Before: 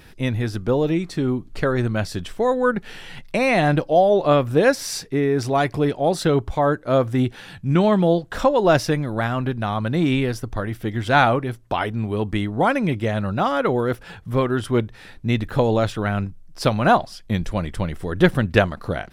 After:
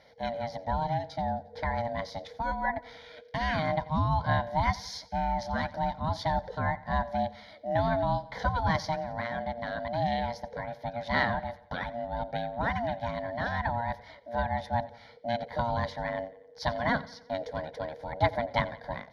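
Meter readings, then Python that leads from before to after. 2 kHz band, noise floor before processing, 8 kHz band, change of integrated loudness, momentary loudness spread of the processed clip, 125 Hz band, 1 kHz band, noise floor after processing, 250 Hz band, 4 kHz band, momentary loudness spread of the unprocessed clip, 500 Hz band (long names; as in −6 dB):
−8.5 dB, −44 dBFS, below −15 dB, −10.5 dB, 9 LU, −11.5 dB, −6.0 dB, −53 dBFS, −15.0 dB, −9.5 dB, 10 LU, −13.0 dB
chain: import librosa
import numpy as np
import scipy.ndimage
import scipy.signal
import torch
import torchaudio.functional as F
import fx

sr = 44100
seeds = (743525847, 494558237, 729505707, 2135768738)

y = scipy.signal.sosfilt(scipy.signal.butter(2, 6700.0, 'lowpass', fs=sr, output='sos'), x)
y = y * np.sin(2.0 * np.pi * 470.0 * np.arange(len(y)) / sr)
y = scipy.signal.sosfilt(scipy.signal.butter(2, 54.0, 'highpass', fs=sr, output='sos'), y)
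y = fx.fixed_phaser(y, sr, hz=1800.0, stages=8)
y = fx.echo_feedback(y, sr, ms=89, feedback_pct=52, wet_db=-20)
y = F.gain(torch.from_numpy(y), -4.5).numpy()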